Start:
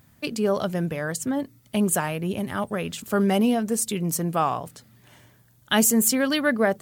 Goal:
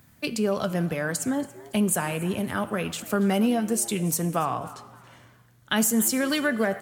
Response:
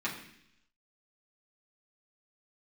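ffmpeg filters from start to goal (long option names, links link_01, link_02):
-filter_complex "[0:a]asplit=2[link_01][link_02];[link_02]tiltshelf=frequency=680:gain=-7.5[link_03];[1:a]atrim=start_sample=2205,asetrate=26019,aresample=44100,highshelf=frequency=4700:gain=7[link_04];[link_03][link_04]afir=irnorm=-1:irlink=0,volume=-22.5dB[link_05];[link_01][link_05]amix=inputs=2:normalize=0,acrossover=split=180[link_06][link_07];[link_07]acompressor=threshold=-22dB:ratio=3[link_08];[link_06][link_08]amix=inputs=2:normalize=0,asettb=1/sr,asplit=3[link_09][link_10][link_11];[link_09]atrim=end=4.434[link_12];[link_10]atrim=start=4.43:end=5.76,asetpts=PTS-STARTPTS,afade=type=in:duration=0.004:curve=qsin,afade=type=out:start_time=1.326:duration=0.004:curve=qsin,highshelf=frequency=7800:gain=-10.5[link_13];[link_11]atrim=start=5.756[link_14];[link_12][link_13]acrossfade=duration=0.004:curve1=hsin:curve2=qsin[link_15];[link_15][link_14]acrossfade=duration=0.004:curve1=qsin:curve2=hsin,asplit=4[link_16][link_17][link_18][link_19];[link_17]adelay=281,afreqshift=120,volume=-20.5dB[link_20];[link_18]adelay=562,afreqshift=240,volume=-29.9dB[link_21];[link_19]adelay=843,afreqshift=360,volume=-39.2dB[link_22];[link_16][link_20][link_21][link_22]amix=inputs=4:normalize=0"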